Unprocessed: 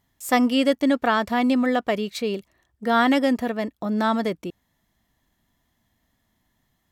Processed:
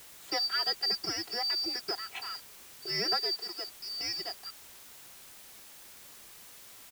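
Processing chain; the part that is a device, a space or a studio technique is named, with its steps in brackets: comb 3.2 ms, depth 97%; split-band scrambled radio (four frequency bands reordered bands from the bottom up 2341; band-pass 300–3000 Hz; white noise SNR 15 dB); 3.18–3.68 s: high-pass 280 Hz 6 dB/octave; trim -7.5 dB

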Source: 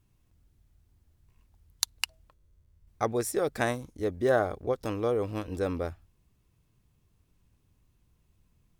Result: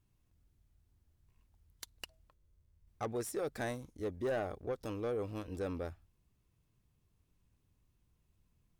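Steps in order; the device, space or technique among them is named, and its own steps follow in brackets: saturation between pre-emphasis and de-emphasis (treble shelf 3.8 kHz +10 dB; saturation -22.5 dBFS, distortion -8 dB; treble shelf 3.8 kHz -10 dB); trim -6.5 dB

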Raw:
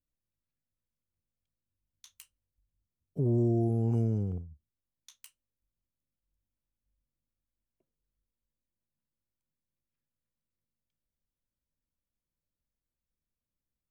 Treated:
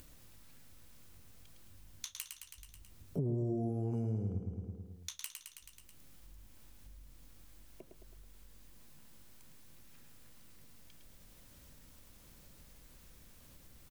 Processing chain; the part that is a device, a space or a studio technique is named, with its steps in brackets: feedback delay 108 ms, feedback 50%, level -7 dB; upward and downward compression (upward compressor, threshold -48 dBFS; compression 4:1, threshold -45 dBFS, peak gain reduction 19 dB); trim +9.5 dB

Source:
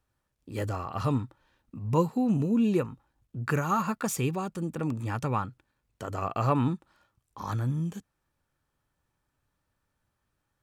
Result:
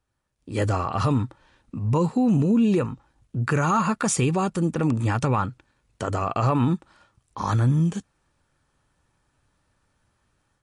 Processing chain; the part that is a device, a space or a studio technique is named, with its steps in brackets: low-bitrate web radio (level rider gain up to 10 dB; peak limiter -13 dBFS, peak gain reduction 9.5 dB; MP3 48 kbps 32 kHz)

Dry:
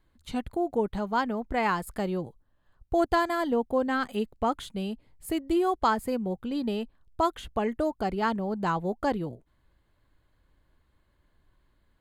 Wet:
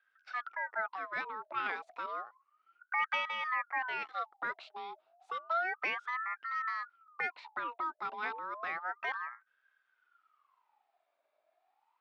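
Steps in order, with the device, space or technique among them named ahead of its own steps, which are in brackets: voice changer toy (ring modulator with a swept carrier 1.1 kHz, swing 45%, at 0.31 Hz; cabinet simulation 510–4700 Hz, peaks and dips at 520 Hz -5 dB, 770 Hz +3 dB, 1.3 kHz +7 dB, 2.2 kHz +3 dB, 3.6 kHz +3 dB); trim -8.5 dB

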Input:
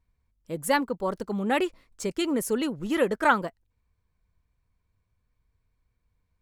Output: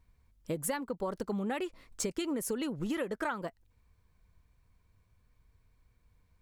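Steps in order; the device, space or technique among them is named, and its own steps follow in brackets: serial compression, leveller first (compression 2:1, threshold -26 dBFS, peak gain reduction 6.5 dB; compression 6:1, threshold -38 dBFS, peak gain reduction 16 dB); trim +6 dB

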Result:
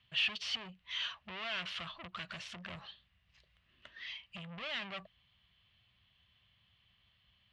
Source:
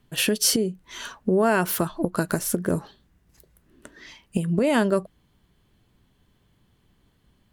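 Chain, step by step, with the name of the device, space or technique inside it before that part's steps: scooped metal amplifier (valve stage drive 31 dB, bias 0.2; cabinet simulation 96–3600 Hz, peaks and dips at 150 Hz -5 dB, 440 Hz -8 dB, 880 Hz -7 dB, 1.5 kHz -7 dB, 2.9 kHz +5 dB; amplifier tone stack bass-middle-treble 10-0-10); trim +5.5 dB

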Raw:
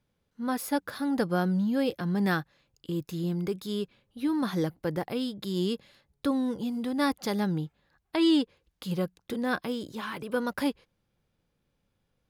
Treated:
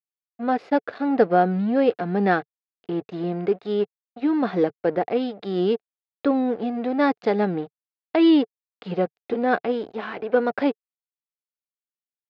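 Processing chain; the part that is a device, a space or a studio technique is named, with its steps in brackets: blown loudspeaker (crossover distortion -44.5 dBFS; cabinet simulation 130–3500 Hz, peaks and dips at 150 Hz -10 dB, 440 Hz +8 dB, 710 Hz +10 dB, 1 kHz -5 dB, 3.3 kHz -6 dB); trim +6.5 dB

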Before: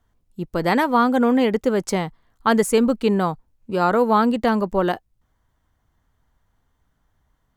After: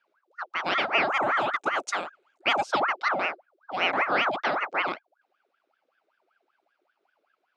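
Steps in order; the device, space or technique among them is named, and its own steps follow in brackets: 1.09–2.63 s: resonant high shelf 6.6 kHz +11.5 dB, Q 3; voice changer toy (ring modulator with a swept carrier 1 kHz, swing 65%, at 5.2 Hz; cabinet simulation 460–4900 Hz, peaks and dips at 470 Hz -6 dB, 1 kHz -8 dB, 1.8 kHz -8 dB)

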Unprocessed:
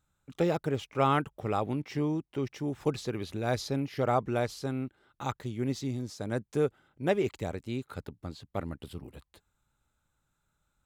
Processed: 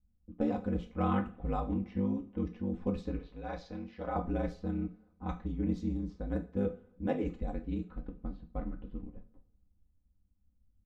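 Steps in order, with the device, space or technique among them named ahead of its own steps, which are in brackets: RIAA curve playback; ring-modulated robot voice (ring modulator 49 Hz; comb 4 ms, depth 70%); level-controlled noise filter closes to 450 Hz, open at -22 dBFS; 3.19–4.16 s: three-band isolator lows -12 dB, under 490 Hz, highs -22 dB, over 6.6 kHz; two-slope reverb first 0.33 s, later 1.7 s, from -26 dB, DRR 3.5 dB; trim -9 dB

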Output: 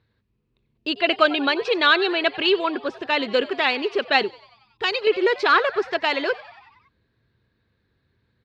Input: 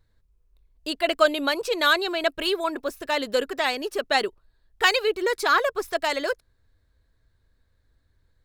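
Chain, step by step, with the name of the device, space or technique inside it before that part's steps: frequency-shifting delay pedal into a guitar cabinet (frequency-shifting echo 93 ms, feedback 62%, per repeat +100 Hz, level -19 dB; cabinet simulation 110–4500 Hz, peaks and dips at 120 Hz +6 dB, 210 Hz +4 dB, 390 Hz +4 dB, 610 Hz -4 dB, 2.6 kHz +6 dB); 4.23–5.07 s: FFT filter 100 Hz 0 dB, 2.1 kHz -11 dB, 4.6 kHz -3 dB; trim +3 dB

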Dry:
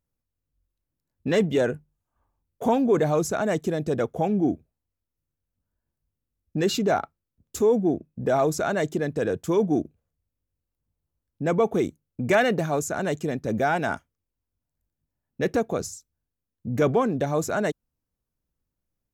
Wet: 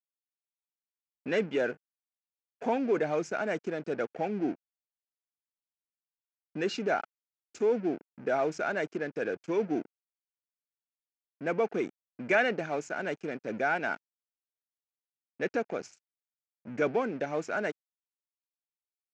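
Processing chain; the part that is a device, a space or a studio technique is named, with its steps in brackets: blown loudspeaker (crossover distortion -40.5 dBFS; cabinet simulation 240–5800 Hz, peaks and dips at 1.1 kHz -5 dB, 1.5 kHz +6 dB, 2.4 kHz +7 dB, 3.7 kHz -7 dB); trim -5.5 dB

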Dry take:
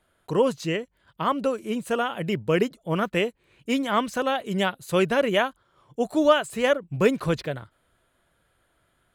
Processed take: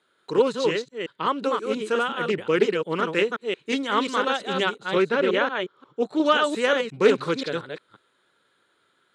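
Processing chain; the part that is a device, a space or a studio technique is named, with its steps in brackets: chunks repeated in reverse 177 ms, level -4 dB; 4.76–6.26 s: low-pass 2.5 kHz 6 dB/octave; full-range speaker at full volume (loudspeaker Doppler distortion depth 0.14 ms; cabinet simulation 250–8700 Hz, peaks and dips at 420 Hz +5 dB, 670 Hz -9 dB, 1.4 kHz +4 dB, 3.9 kHz +9 dB)

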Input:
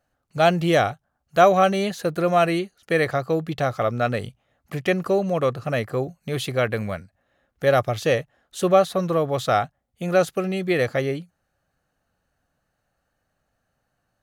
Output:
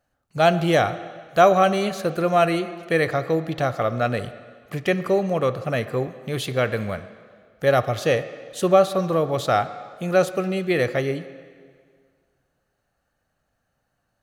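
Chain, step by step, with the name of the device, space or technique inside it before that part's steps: filtered reverb send (on a send: high-pass 180 Hz + low-pass 5.9 kHz 12 dB/octave + reverberation RT60 1.9 s, pre-delay 8 ms, DRR 11.5 dB)

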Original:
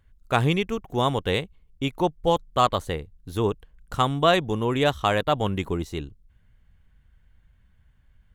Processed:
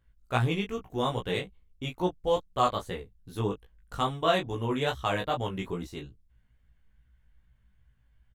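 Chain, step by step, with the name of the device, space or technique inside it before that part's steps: double-tracked vocal (doubling 16 ms -4.5 dB; chorus 2.4 Hz, delay 16.5 ms, depth 3.7 ms); trim -4.5 dB

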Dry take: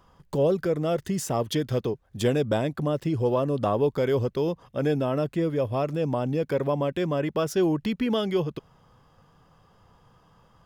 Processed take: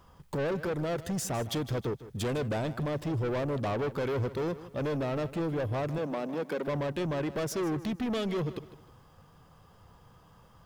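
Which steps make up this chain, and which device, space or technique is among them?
open-reel tape (saturation -28.5 dBFS, distortion -8 dB; peaking EQ 76 Hz +4 dB 1.1 oct; white noise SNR 45 dB); 5.98–6.68 s: elliptic high-pass 170 Hz; bit-crushed delay 155 ms, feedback 35%, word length 10-bit, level -15 dB

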